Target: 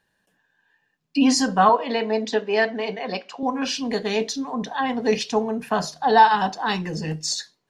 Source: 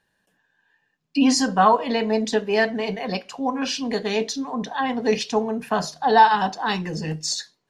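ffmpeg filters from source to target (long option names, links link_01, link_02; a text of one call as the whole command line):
ffmpeg -i in.wav -filter_complex "[0:a]asettb=1/sr,asplit=3[link_01][link_02][link_03];[link_01]atrim=end=1.694[link_04];[link_02]atrim=start=1.69:end=3.43,asetpts=PTS-STARTPTS,afade=type=in:duration=0.004:curve=qsin,afade=type=out:start_time=1.736:duration=0.004:curve=qsin,highpass=250,lowpass=5200[link_05];[link_03]atrim=start=3.426[link_06];[link_04][link_05]acrossfade=duration=0.004:curve1=hsin:curve2=qsin[link_07];[link_07][link_06]acrossfade=duration=0.004:curve1=qsin:curve2=hsin" out.wav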